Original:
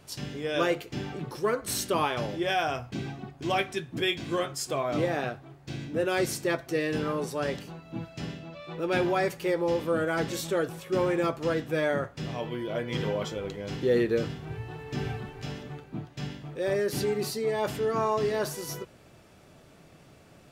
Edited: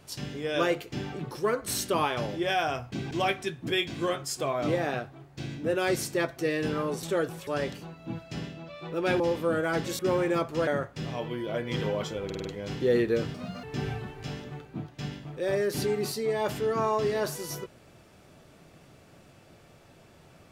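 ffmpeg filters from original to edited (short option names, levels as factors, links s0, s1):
-filter_complex "[0:a]asplit=13[s0][s1][s2][s3][s4][s5][s6][s7][s8][s9][s10][s11][s12];[s0]atrim=end=3.112[s13];[s1]atrim=start=3.408:end=7.332[s14];[s2]atrim=start=10.428:end=10.872[s15];[s3]atrim=start=7.328:end=9.062[s16];[s4]atrim=start=9.638:end=10.432[s17];[s5]atrim=start=10.868:end=11.552[s18];[s6]atrim=start=11.878:end=13.512[s19];[s7]atrim=start=13.458:end=13.512[s20];[s8]atrim=start=13.458:end=13.512[s21];[s9]atrim=start=13.458:end=13.512[s22];[s10]atrim=start=13.458:end=14.354[s23];[s11]atrim=start=14.35:end=14.82,asetpts=PTS-STARTPTS,asetrate=70560,aresample=44100,atrim=end_sample=12954,asetpts=PTS-STARTPTS[s24];[s12]atrim=start=14.816[s25];[s13][s14]acrossfade=d=0.004:c1=hsin:c2=hsin[s26];[s26][s15]acrossfade=d=0.004:c1=hsin:c2=hsin[s27];[s27][s16]acrossfade=d=0.004:c1=hsin:c2=hsin[s28];[s28][s17]acrossfade=d=0.004:c1=hsin:c2=hsin[s29];[s29][s18]acrossfade=d=0.004:c1=hsin:c2=hsin[s30];[s30][s19]acrossfade=d=0.004:c1=hsin:c2=hsin[s31];[s31][s20]acrossfade=d=0.004:c1=hsin:c2=hsin[s32];[s32][s21]acrossfade=d=0.004:c1=hsin:c2=hsin[s33];[s33][s22]acrossfade=d=0.004:c1=hsin:c2=hsin[s34];[s34][s23]acrossfade=d=0.004:c1=hsin:c2=hsin[s35];[s35][s24]acrossfade=d=0.004:c1=hsin:c2=hsin[s36];[s36][s25]acrossfade=d=0.004:c1=hsin:c2=hsin"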